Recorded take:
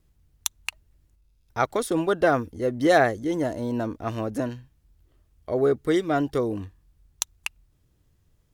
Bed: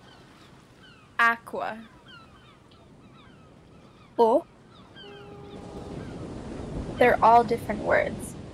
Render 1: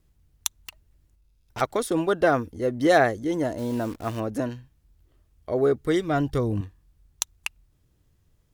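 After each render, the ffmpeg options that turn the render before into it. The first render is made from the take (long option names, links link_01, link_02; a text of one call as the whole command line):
ffmpeg -i in.wav -filter_complex "[0:a]asplit=3[link_01][link_02][link_03];[link_01]afade=type=out:start_time=0.54:duration=0.02[link_04];[link_02]aeval=exprs='0.0501*(abs(mod(val(0)/0.0501+3,4)-2)-1)':channel_layout=same,afade=type=in:start_time=0.54:duration=0.02,afade=type=out:start_time=1.6:duration=0.02[link_05];[link_03]afade=type=in:start_time=1.6:duration=0.02[link_06];[link_04][link_05][link_06]amix=inputs=3:normalize=0,asettb=1/sr,asplit=3[link_07][link_08][link_09];[link_07]atrim=end=3.584[link_10];[link_08]atrim=start=3.58:end=4.2,asetpts=PTS-STARTPTS,afade=type=in:duration=0.004:curve=qsin,afade=type=out:start_time=0.616:duration=0.004:curve=qsin,acrusher=bits=8:dc=4:mix=0:aa=0.000001[link_11];[link_09]atrim=start=4.196[link_12];[link_10][link_11]acrossfade=duration=0.004:curve1=hsin:curve2=qsin[link_13];[link_13][link_12]acrossfade=duration=0.004:curve1=qsin:curve2=hsin,asettb=1/sr,asplit=3[link_14][link_15][link_16];[link_14]atrim=end=5.694[link_17];[link_15]atrim=start=5.69:end=6.61,asetpts=PTS-STARTPTS,afade=type=in:duration=0.004:curve=qsin,afade=type=out:start_time=0.916:duration=0.004:curve=qsin,asubboost=boost=12:cutoff=180[link_18];[link_16]atrim=start=6.606[link_19];[link_17][link_18]acrossfade=duration=0.004:curve1=hsin:curve2=qsin[link_20];[link_20][link_19]acrossfade=duration=0.004:curve1=qsin:curve2=hsin" out.wav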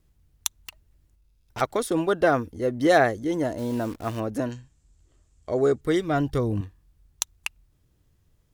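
ffmpeg -i in.wav -filter_complex "[0:a]asettb=1/sr,asplit=3[link_01][link_02][link_03];[link_01]atrim=end=4.524[link_04];[link_02]atrim=start=4.52:end=5.81,asetpts=PTS-STARTPTS,afade=type=in:duration=0.004:curve=qsin,afade=type=out:start_time=1.286:duration=0.004:curve=qsin,lowpass=frequency=7500:width_type=q:width=6[link_05];[link_03]atrim=start=5.806[link_06];[link_04][link_05]acrossfade=duration=0.004:curve1=hsin:curve2=qsin[link_07];[link_07][link_06]acrossfade=duration=0.004:curve1=qsin:curve2=hsin" out.wav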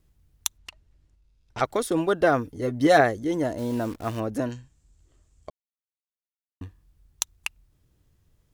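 ffmpeg -i in.wav -filter_complex "[0:a]asplit=3[link_01][link_02][link_03];[link_01]afade=type=out:start_time=0.57:duration=0.02[link_04];[link_02]lowpass=6800,afade=type=in:start_time=0.57:duration=0.02,afade=type=out:start_time=1.64:duration=0.02[link_05];[link_03]afade=type=in:start_time=1.64:duration=0.02[link_06];[link_04][link_05][link_06]amix=inputs=3:normalize=0,asettb=1/sr,asplit=3[link_07][link_08][link_09];[link_07]atrim=end=2.444[link_10];[link_08]atrim=start=2.44:end=3.01,asetpts=PTS-STARTPTS,afade=type=in:duration=0.004:curve=qsin,afade=type=out:start_time=0.566:duration=0.004:curve=qsin,aecho=1:1:7:0.49,atrim=end_sample=25137[link_11];[link_09]atrim=start=3.006[link_12];[link_10][link_11]acrossfade=duration=0.004:curve1=hsin:curve2=qsin[link_13];[link_13][link_12]acrossfade=duration=0.004:curve1=qsin:curve2=hsin,asplit=3[link_14][link_15][link_16];[link_14]atrim=end=5.5,asetpts=PTS-STARTPTS,afade=type=out:start_time=5.496:duration=0.004:curve=hsin[link_17];[link_15]atrim=start=5.5:end=6.61,asetpts=PTS-STARTPTS,volume=0[link_18];[link_16]atrim=start=6.61,asetpts=PTS-STARTPTS,afade=type=in:duration=0.004:curve=hsin[link_19];[link_17][link_18][link_19]concat=n=3:v=0:a=1" out.wav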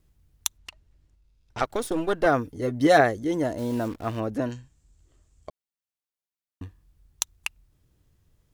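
ffmpeg -i in.wav -filter_complex "[0:a]asettb=1/sr,asplit=3[link_01][link_02][link_03];[link_01]atrim=end=1.624[link_04];[link_02]atrim=start=1.62:end=2.26,asetpts=PTS-STARTPTS,afade=type=in:duration=0.004:curve=qsin,afade=type=out:start_time=0.636:duration=0.004:curve=qsin,aeval=exprs='if(lt(val(0),0),0.447*val(0),val(0))':channel_layout=same[link_05];[link_03]atrim=start=2.256[link_06];[link_04][link_05]acrossfade=duration=0.004:curve1=hsin:curve2=qsin[link_07];[link_07][link_06]acrossfade=duration=0.004:curve1=qsin:curve2=hsin,asettb=1/sr,asplit=3[link_08][link_09][link_10];[link_08]atrim=end=3.884[link_11];[link_09]atrim=start=3.88:end=4.51,asetpts=PTS-STARTPTS,afade=type=in:duration=0.004:curve=qsin,afade=type=out:start_time=0.626:duration=0.004:curve=qsin,acrossover=split=4400[link_12][link_13];[link_13]acompressor=threshold=-53dB:ratio=4:attack=1:release=60[link_14];[link_12][link_14]amix=inputs=2:normalize=0[link_15];[link_10]atrim=start=4.506[link_16];[link_11][link_15]acrossfade=duration=0.004:curve1=hsin:curve2=qsin[link_17];[link_17][link_16]acrossfade=duration=0.004:curve1=qsin:curve2=hsin" out.wav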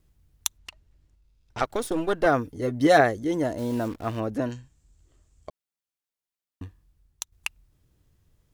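ffmpeg -i in.wav -filter_complex "[0:a]asplit=2[link_01][link_02];[link_01]atrim=end=7.32,asetpts=PTS-STARTPTS,afade=type=out:start_time=6.63:duration=0.69:silence=0.334965[link_03];[link_02]atrim=start=7.32,asetpts=PTS-STARTPTS,afade=type=in:duration=0.004:curve=hsin:silence=0.334965[link_04];[link_03][link_04]concat=n=2:v=0:a=1" out.wav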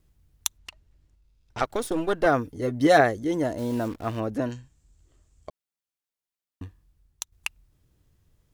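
ffmpeg -i in.wav -af anull out.wav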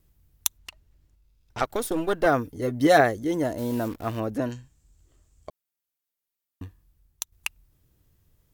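ffmpeg -i in.wav -af "equalizer=frequency=15000:width=0.94:gain=11" out.wav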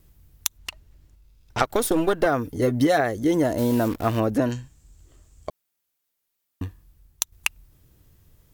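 ffmpeg -i in.wav -af "acompressor=threshold=-24dB:ratio=16,alimiter=level_in=8dB:limit=-1dB:release=50:level=0:latency=1" out.wav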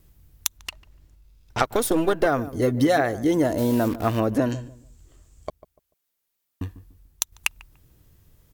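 ffmpeg -i in.wav -filter_complex "[0:a]asplit=2[link_01][link_02];[link_02]adelay=146,lowpass=frequency=970:poles=1,volume=-15.5dB,asplit=2[link_03][link_04];[link_04]adelay=146,lowpass=frequency=970:poles=1,volume=0.29,asplit=2[link_05][link_06];[link_06]adelay=146,lowpass=frequency=970:poles=1,volume=0.29[link_07];[link_01][link_03][link_05][link_07]amix=inputs=4:normalize=0" out.wav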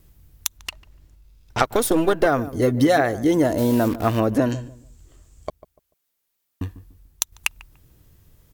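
ffmpeg -i in.wav -af "volume=2.5dB,alimiter=limit=-1dB:level=0:latency=1" out.wav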